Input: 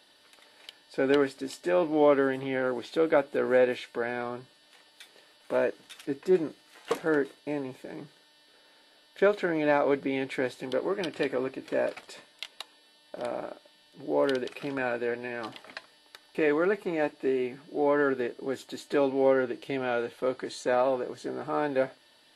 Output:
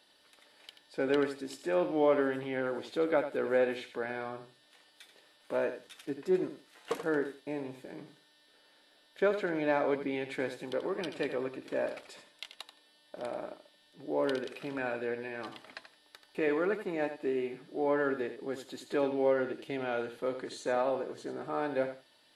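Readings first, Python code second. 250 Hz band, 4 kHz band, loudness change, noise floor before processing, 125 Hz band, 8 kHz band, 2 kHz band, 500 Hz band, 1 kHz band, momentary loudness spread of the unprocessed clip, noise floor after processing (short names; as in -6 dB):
-4.5 dB, -4.5 dB, -4.5 dB, -61 dBFS, -4.5 dB, n/a, -4.5 dB, -4.5 dB, -4.5 dB, 16 LU, -65 dBFS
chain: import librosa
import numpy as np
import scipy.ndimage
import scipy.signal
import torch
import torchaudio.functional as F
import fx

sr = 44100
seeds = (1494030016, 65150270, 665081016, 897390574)

y = fx.echo_feedback(x, sr, ms=84, feedback_pct=17, wet_db=-10.0)
y = F.gain(torch.from_numpy(y), -5.0).numpy()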